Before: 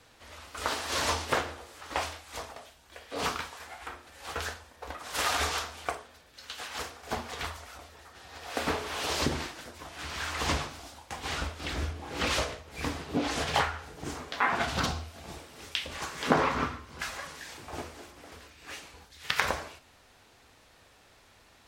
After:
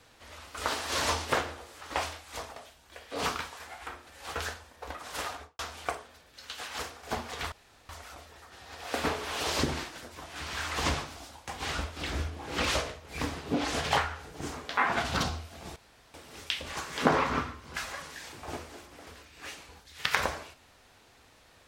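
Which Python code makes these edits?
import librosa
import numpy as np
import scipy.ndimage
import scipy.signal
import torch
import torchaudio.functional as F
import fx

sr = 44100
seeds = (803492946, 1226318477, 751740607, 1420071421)

y = fx.studio_fade_out(x, sr, start_s=4.98, length_s=0.61)
y = fx.edit(y, sr, fx.insert_room_tone(at_s=7.52, length_s=0.37),
    fx.insert_room_tone(at_s=15.39, length_s=0.38), tone=tone)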